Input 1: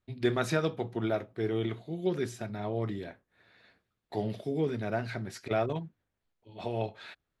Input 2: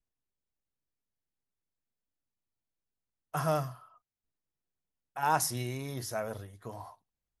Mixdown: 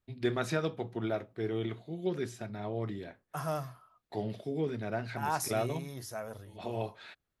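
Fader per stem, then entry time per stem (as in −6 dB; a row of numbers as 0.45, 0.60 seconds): −3.0, −5.0 decibels; 0.00, 0.00 seconds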